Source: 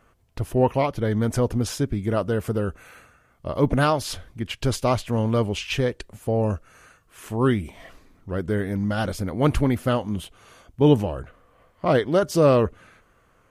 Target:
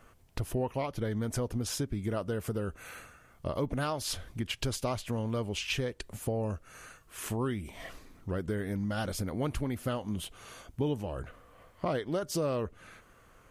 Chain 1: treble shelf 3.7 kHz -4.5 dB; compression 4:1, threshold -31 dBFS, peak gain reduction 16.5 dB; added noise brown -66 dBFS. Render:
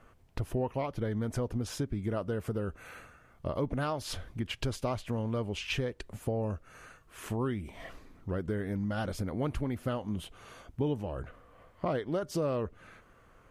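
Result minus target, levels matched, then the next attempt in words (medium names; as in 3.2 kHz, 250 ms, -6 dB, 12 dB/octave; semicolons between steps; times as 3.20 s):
8 kHz band -7.0 dB
treble shelf 3.7 kHz +5 dB; compression 4:1, threshold -31 dBFS, peak gain reduction 16.5 dB; added noise brown -66 dBFS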